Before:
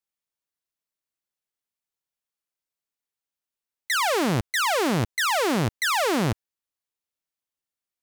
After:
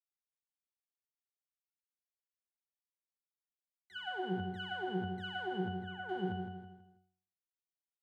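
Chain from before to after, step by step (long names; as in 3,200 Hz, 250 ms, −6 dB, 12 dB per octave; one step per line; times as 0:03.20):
0:05.69–0:06.09: high-frequency loss of the air 260 metres
power curve on the samples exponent 3
parametric band 5,600 Hz −9.5 dB 0.28 octaves
repeating echo 162 ms, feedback 32%, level −9 dB
in parallel at −3 dB: downward compressor, threshold −38 dBFS, peak gain reduction 15 dB
on the sum: resonances in every octave F#, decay 0.51 s
level +6.5 dB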